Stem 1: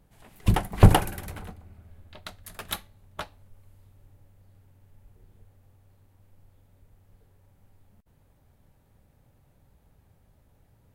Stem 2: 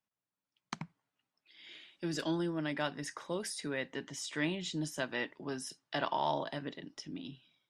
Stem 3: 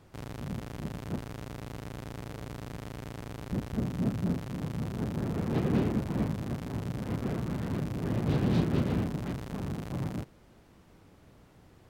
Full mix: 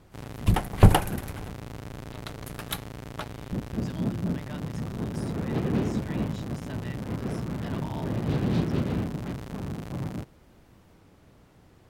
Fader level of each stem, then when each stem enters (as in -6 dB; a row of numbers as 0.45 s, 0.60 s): -1.0 dB, -9.5 dB, +1.0 dB; 0.00 s, 1.70 s, 0.00 s